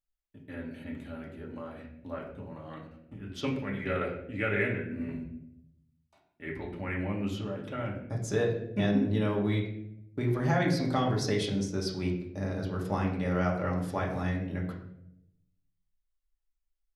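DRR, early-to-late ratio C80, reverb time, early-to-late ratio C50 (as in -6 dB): -2.5 dB, 9.0 dB, 0.75 s, 6.0 dB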